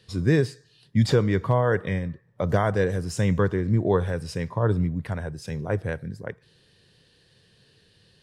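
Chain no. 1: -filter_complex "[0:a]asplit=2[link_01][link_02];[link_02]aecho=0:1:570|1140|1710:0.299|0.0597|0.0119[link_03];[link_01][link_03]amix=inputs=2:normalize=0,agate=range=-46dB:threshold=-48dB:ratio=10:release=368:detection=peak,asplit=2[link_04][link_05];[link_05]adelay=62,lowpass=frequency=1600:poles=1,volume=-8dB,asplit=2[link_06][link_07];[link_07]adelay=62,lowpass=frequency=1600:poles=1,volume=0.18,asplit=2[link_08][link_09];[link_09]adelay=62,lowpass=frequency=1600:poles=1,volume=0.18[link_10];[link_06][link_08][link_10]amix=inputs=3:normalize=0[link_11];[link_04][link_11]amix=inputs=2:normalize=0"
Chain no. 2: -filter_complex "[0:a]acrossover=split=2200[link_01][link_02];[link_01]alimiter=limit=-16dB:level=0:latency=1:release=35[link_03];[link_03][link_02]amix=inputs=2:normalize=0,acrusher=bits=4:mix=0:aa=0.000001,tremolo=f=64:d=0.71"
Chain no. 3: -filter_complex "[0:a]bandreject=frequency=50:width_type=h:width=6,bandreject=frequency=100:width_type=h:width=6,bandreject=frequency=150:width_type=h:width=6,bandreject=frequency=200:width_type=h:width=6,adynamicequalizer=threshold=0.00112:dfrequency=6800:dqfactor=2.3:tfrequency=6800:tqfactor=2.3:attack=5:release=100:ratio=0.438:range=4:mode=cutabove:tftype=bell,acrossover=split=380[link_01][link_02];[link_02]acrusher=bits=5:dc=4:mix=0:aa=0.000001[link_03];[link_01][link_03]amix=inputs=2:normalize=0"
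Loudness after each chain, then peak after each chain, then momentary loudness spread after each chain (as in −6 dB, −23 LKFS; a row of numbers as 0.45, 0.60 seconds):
−24.0, −30.5, −25.5 LKFS; −7.5, −14.0, −8.5 dBFS; 12, 8, 12 LU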